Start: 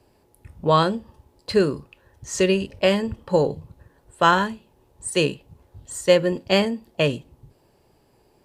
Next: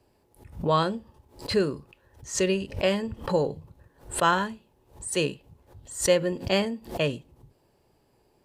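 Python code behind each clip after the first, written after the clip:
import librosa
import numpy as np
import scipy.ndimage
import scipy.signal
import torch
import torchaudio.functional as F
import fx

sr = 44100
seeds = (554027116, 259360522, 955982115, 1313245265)

y = fx.pre_swell(x, sr, db_per_s=150.0)
y = y * 10.0 ** (-5.5 / 20.0)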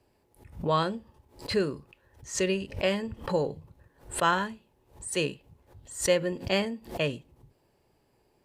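y = fx.peak_eq(x, sr, hz=2100.0, db=3.0, octaves=0.77)
y = y * 10.0 ** (-3.0 / 20.0)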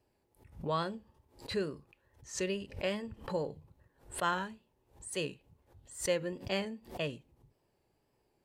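y = fx.wow_flutter(x, sr, seeds[0], rate_hz=2.1, depth_cents=58.0)
y = y * 10.0 ** (-7.5 / 20.0)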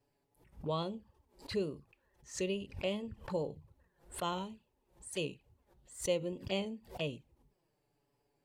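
y = fx.env_flanger(x, sr, rest_ms=7.3, full_db=-34.5)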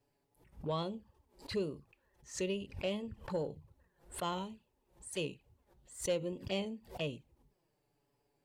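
y = 10.0 ** (-23.5 / 20.0) * np.tanh(x / 10.0 ** (-23.5 / 20.0))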